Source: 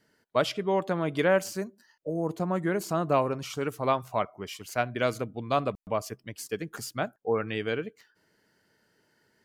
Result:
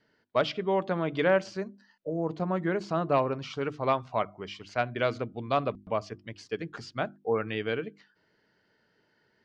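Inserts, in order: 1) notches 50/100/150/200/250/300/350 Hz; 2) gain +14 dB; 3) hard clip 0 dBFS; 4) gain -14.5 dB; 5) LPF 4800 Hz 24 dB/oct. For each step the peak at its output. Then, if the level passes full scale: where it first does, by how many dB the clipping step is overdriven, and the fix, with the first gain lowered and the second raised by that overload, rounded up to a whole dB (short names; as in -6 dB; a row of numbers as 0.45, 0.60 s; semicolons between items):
-11.0, +3.0, 0.0, -14.5, -13.5 dBFS; step 2, 3.0 dB; step 2 +11 dB, step 4 -11.5 dB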